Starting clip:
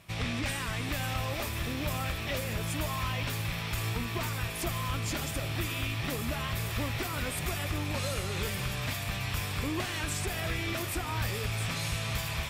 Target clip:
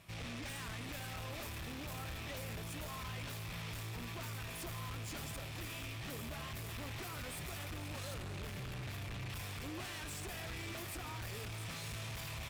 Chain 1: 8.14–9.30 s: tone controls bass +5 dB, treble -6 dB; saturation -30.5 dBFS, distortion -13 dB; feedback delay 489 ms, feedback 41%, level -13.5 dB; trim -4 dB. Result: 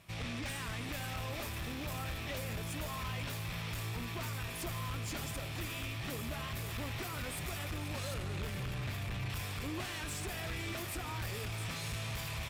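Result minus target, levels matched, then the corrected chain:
saturation: distortion -6 dB
8.14–9.30 s: tone controls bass +5 dB, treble -6 dB; saturation -38 dBFS, distortion -7 dB; feedback delay 489 ms, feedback 41%, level -13.5 dB; trim -4 dB

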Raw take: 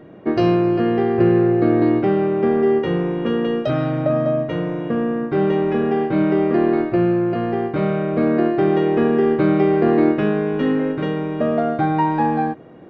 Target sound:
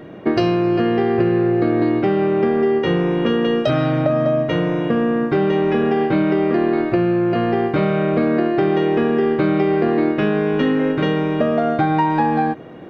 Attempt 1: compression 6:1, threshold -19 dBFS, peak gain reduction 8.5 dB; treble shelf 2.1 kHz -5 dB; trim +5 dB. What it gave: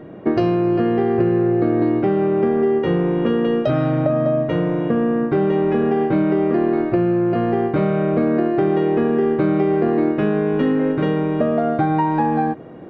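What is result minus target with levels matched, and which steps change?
4 kHz band -7.5 dB
change: treble shelf 2.1 kHz +7 dB

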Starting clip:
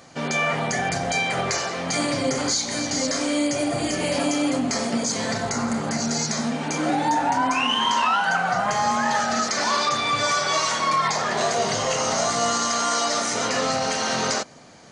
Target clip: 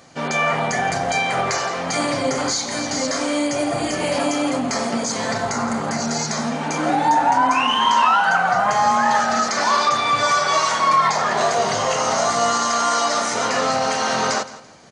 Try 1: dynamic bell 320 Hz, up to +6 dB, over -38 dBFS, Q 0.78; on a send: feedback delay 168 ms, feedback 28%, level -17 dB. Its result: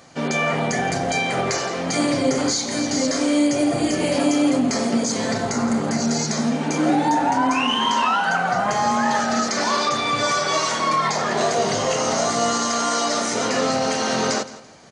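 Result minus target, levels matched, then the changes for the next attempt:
250 Hz band +6.0 dB
change: dynamic bell 1 kHz, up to +6 dB, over -38 dBFS, Q 0.78

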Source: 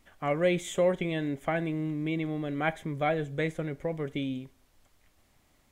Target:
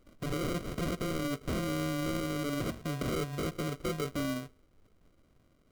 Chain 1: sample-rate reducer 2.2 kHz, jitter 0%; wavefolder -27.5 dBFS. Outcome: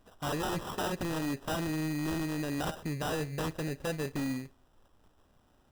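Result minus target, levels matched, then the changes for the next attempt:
sample-rate reducer: distortion -16 dB
change: sample-rate reducer 870 Hz, jitter 0%

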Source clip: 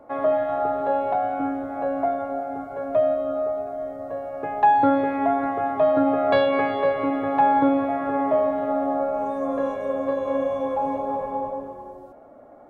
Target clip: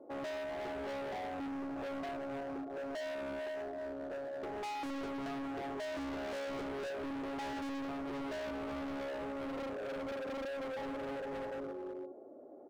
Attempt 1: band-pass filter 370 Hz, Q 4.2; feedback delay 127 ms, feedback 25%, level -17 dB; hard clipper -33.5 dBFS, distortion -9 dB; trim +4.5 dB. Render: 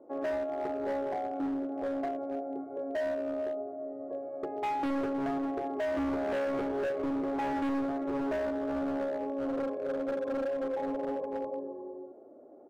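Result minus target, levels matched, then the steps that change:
hard clipper: distortion -5 dB
change: hard clipper -43.5 dBFS, distortion -3 dB

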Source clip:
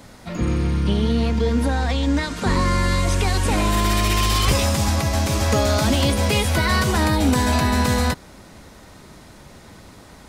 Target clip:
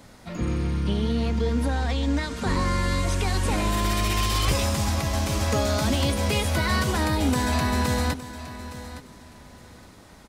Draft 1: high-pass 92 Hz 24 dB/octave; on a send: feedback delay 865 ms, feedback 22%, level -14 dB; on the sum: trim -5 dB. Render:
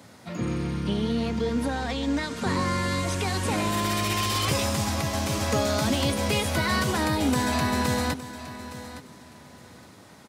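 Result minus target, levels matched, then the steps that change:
125 Hz band -2.5 dB
remove: high-pass 92 Hz 24 dB/octave

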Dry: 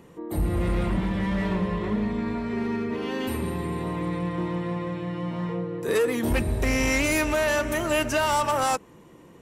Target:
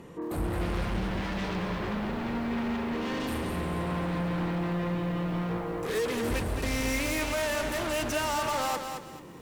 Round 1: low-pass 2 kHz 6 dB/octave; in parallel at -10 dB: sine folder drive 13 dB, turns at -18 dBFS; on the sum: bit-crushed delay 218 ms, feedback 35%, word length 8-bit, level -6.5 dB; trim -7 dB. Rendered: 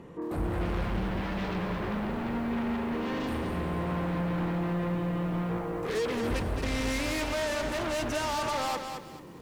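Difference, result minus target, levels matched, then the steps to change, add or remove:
8 kHz band -3.0 dB
change: low-pass 7.9 kHz 6 dB/octave

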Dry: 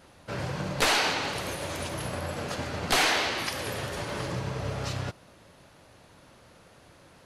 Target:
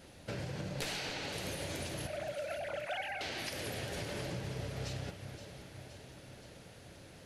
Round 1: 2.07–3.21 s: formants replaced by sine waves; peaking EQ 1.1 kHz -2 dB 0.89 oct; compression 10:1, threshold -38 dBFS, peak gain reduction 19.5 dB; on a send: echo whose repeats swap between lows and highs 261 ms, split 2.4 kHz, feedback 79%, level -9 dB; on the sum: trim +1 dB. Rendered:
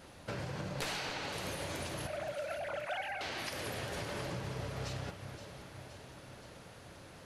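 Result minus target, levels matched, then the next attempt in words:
1 kHz band +2.5 dB
2.07–3.21 s: formants replaced by sine waves; peaking EQ 1.1 kHz -10 dB 0.89 oct; compression 10:1, threshold -38 dBFS, peak gain reduction 17 dB; on a send: echo whose repeats swap between lows and highs 261 ms, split 2.4 kHz, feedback 79%, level -9 dB; on the sum: trim +1 dB

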